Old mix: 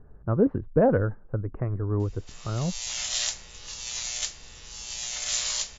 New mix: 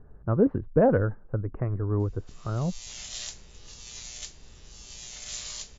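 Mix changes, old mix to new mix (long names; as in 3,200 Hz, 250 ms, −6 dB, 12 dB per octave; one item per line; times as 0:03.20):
background −9.0 dB
reverb: off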